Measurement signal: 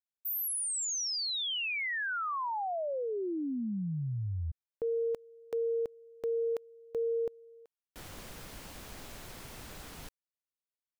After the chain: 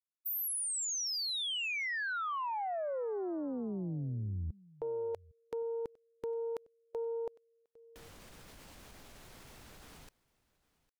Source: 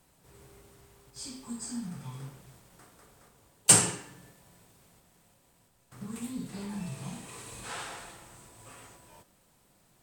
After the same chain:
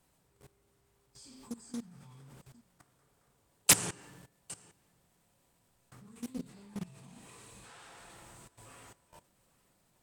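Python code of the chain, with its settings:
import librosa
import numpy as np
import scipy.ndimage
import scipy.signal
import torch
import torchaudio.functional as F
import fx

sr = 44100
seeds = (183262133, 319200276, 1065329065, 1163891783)

y = fx.level_steps(x, sr, step_db=18)
y = y + 10.0 ** (-23.0 / 20.0) * np.pad(y, (int(806 * sr / 1000.0), 0))[:len(y)]
y = fx.doppler_dist(y, sr, depth_ms=0.78)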